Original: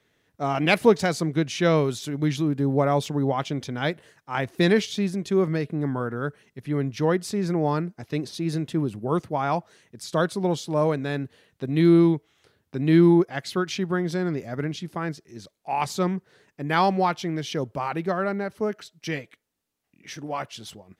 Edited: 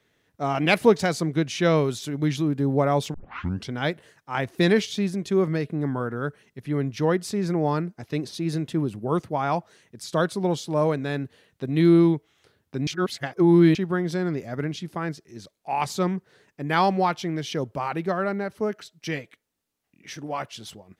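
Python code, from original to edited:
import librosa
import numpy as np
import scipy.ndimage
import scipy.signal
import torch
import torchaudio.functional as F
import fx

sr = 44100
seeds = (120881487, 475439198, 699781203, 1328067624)

y = fx.edit(x, sr, fx.tape_start(start_s=3.14, length_s=0.57),
    fx.reverse_span(start_s=12.87, length_s=0.88), tone=tone)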